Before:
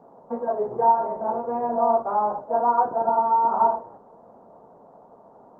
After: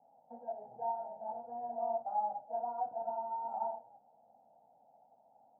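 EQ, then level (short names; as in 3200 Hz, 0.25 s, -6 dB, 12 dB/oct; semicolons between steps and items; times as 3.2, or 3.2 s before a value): double band-pass 390 Hz, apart 2.1 oct; air absorption 280 m; fixed phaser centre 450 Hz, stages 4; 0.0 dB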